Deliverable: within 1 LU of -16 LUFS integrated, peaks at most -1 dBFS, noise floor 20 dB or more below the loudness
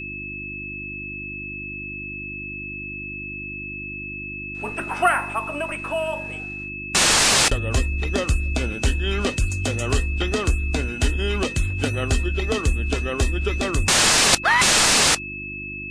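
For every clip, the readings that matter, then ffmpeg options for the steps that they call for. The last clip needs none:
hum 50 Hz; harmonics up to 350 Hz; hum level -35 dBFS; steady tone 2600 Hz; tone level -31 dBFS; loudness -21.5 LUFS; peak -5.5 dBFS; loudness target -16.0 LUFS
-> -af "bandreject=f=50:t=h:w=4,bandreject=f=100:t=h:w=4,bandreject=f=150:t=h:w=4,bandreject=f=200:t=h:w=4,bandreject=f=250:t=h:w=4,bandreject=f=300:t=h:w=4,bandreject=f=350:t=h:w=4"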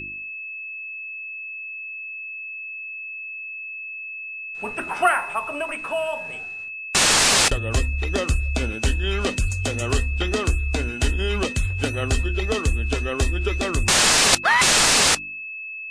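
hum none; steady tone 2600 Hz; tone level -31 dBFS
-> -af "bandreject=f=2.6k:w=30"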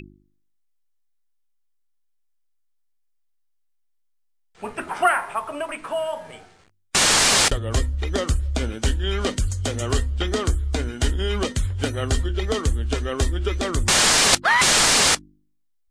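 steady tone none; loudness -20.5 LUFS; peak -6.0 dBFS; loudness target -16.0 LUFS
-> -af "volume=4.5dB"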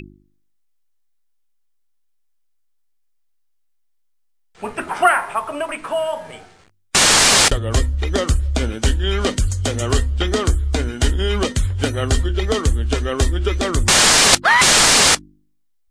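loudness -16.0 LUFS; peak -1.5 dBFS; noise floor -62 dBFS

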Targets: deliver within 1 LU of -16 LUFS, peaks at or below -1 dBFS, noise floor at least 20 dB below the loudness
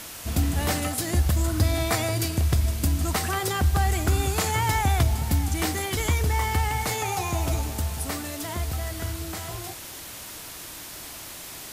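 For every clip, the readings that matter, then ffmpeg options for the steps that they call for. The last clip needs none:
noise floor -40 dBFS; noise floor target -46 dBFS; loudness -25.5 LUFS; peak -12.0 dBFS; loudness target -16.0 LUFS
-> -af "afftdn=nr=6:nf=-40"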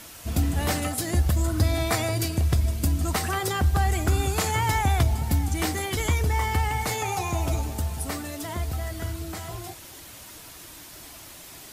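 noise floor -44 dBFS; noise floor target -46 dBFS
-> -af "afftdn=nr=6:nf=-44"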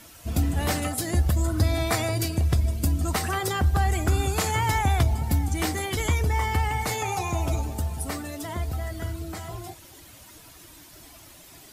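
noise floor -49 dBFS; loudness -26.0 LUFS; peak -12.5 dBFS; loudness target -16.0 LUFS
-> -af "volume=10dB"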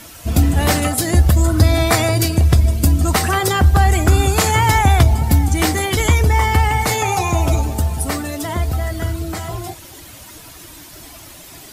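loudness -16.0 LUFS; peak -2.5 dBFS; noise floor -39 dBFS

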